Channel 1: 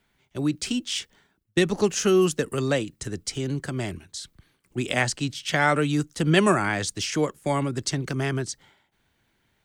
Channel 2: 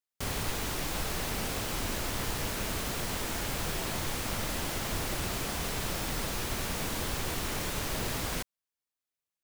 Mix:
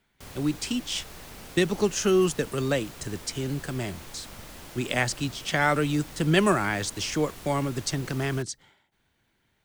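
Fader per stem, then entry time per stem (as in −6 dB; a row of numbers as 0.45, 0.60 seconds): −2.0, −10.5 decibels; 0.00, 0.00 seconds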